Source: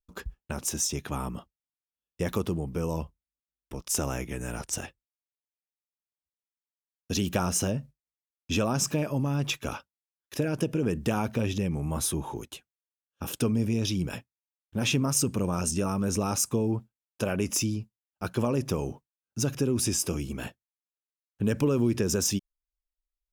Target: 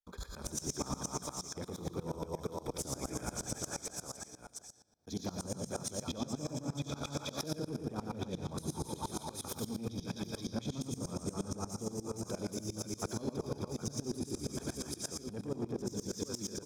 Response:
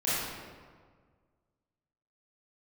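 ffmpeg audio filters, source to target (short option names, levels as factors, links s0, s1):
-filter_complex "[0:a]aecho=1:1:150|360|654|1066|1642:0.631|0.398|0.251|0.158|0.1,acrossover=split=420[s0][s1];[s1]acompressor=threshold=0.0141:ratio=5[s2];[s0][s2]amix=inputs=2:normalize=0,asuperstop=centerf=2800:order=8:qfactor=4.4,equalizer=f=1900:w=2.8:g=-10.5,bandreject=f=63.49:t=h:w=4,bandreject=f=126.98:t=h:w=4,bandreject=f=190.47:t=h:w=4,asoftclip=type=tanh:threshold=0.106,acompressor=threshold=0.0158:ratio=10,asplit=2[s3][s4];[s4]highshelf=f=3200:t=q:w=1.5:g=12[s5];[1:a]atrim=start_sample=2205,adelay=84[s6];[s5][s6]afir=irnorm=-1:irlink=0,volume=0.0891[s7];[s3][s7]amix=inputs=2:normalize=0,atempo=1.4,asplit=2[s8][s9];[s9]highpass=f=720:p=1,volume=3.16,asoftclip=type=tanh:threshold=0.0447[s10];[s8][s10]amix=inputs=2:normalize=0,lowpass=f=3500:p=1,volume=0.501,aeval=exprs='val(0)*pow(10,-21*if(lt(mod(-8.5*n/s,1),2*abs(-8.5)/1000),1-mod(-8.5*n/s,1)/(2*abs(-8.5)/1000),(mod(-8.5*n/s,1)-2*abs(-8.5)/1000)/(1-2*abs(-8.5)/1000))/20)':c=same,volume=2.66"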